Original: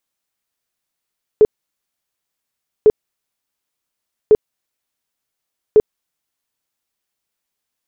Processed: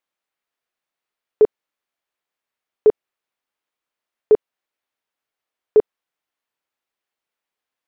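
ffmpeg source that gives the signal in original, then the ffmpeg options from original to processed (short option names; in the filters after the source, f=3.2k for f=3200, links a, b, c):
-f lavfi -i "aevalsrc='0.596*sin(2*PI*428*mod(t,1.45))*lt(mod(t,1.45),17/428)':d=5.8:s=44100"
-af "bass=f=250:g=-11,treble=f=4k:g=-12"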